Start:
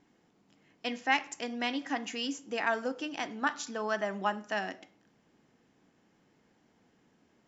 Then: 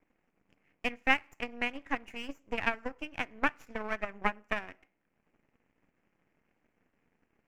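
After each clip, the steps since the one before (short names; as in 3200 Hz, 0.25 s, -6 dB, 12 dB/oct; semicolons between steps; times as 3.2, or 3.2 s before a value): half-wave rectifier; resonant high shelf 3000 Hz -7 dB, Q 3; transient shaper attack +11 dB, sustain -5 dB; gain -5.5 dB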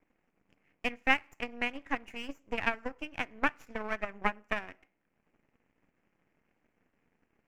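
nothing audible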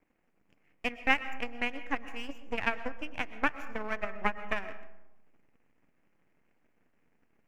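reverb RT60 1.0 s, pre-delay 85 ms, DRR 13 dB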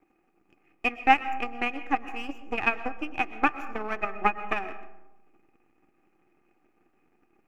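small resonant body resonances 350/780/1200/2500 Hz, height 15 dB, ringing for 45 ms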